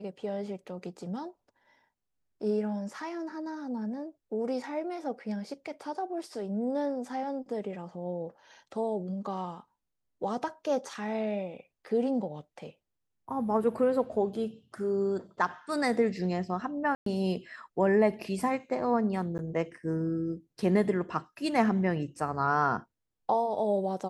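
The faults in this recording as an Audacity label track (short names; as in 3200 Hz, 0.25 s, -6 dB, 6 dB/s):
16.950000	17.060000	gap 0.113 s
19.380000	19.390000	gap 9.9 ms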